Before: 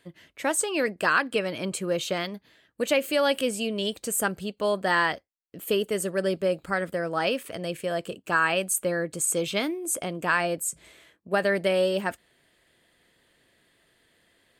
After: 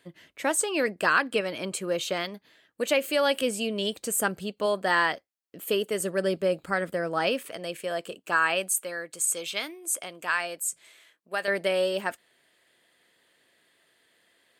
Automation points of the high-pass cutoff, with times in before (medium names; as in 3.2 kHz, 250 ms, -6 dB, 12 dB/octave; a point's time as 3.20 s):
high-pass 6 dB/octave
120 Hz
from 1.41 s 270 Hz
from 3.42 s 120 Hz
from 4.66 s 250 Hz
from 6.00 s 110 Hz
from 7.49 s 450 Hz
from 8.69 s 1.4 kHz
from 11.48 s 420 Hz